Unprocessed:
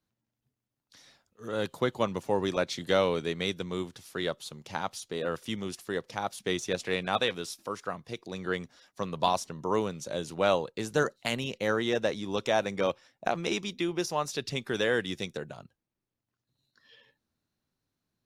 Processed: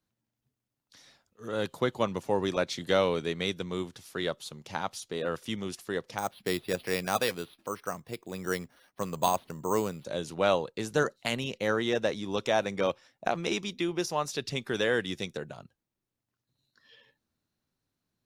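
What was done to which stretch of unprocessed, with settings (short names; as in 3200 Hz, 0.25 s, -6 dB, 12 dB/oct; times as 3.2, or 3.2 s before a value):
6.18–10.05 careless resampling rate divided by 6×, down filtered, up hold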